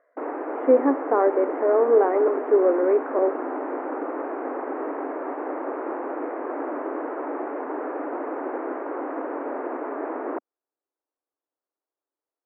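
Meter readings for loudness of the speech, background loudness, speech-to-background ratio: -21.0 LUFS, -30.5 LUFS, 9.5 dB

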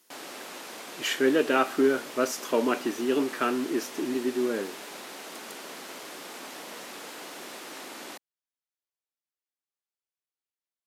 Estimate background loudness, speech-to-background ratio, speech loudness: -40.5 LUFS, 13.5 dB, -27.0 LUFS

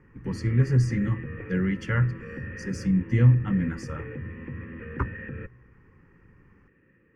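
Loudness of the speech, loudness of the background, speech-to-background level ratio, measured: -25.5 LUFS, -38.5 LUFS, 13.0 dB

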